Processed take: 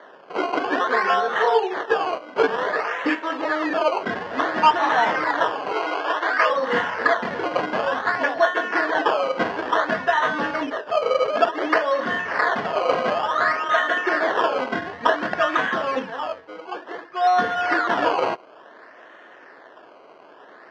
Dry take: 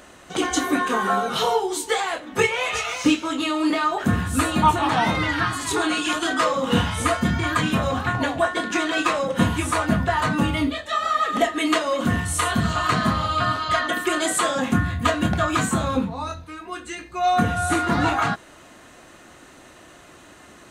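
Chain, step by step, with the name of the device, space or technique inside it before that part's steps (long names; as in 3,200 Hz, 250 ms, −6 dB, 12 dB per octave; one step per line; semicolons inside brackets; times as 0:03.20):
circuit-bent sampling toy (sample-and-hold swept by an LFO 17×, swing 100% 0.56 Hz; loudspeaker in its box 420–4,100 Hz, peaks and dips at 440 Hz +6 dB, 630 Hz +4 dB, 1,000 Hz +3 dB, 1,700 Hz +9 dB, 2,400 Hz −5 dB, 3,800 Hz −7 dB)
0:05.72–0:06.50: meter weighting curve A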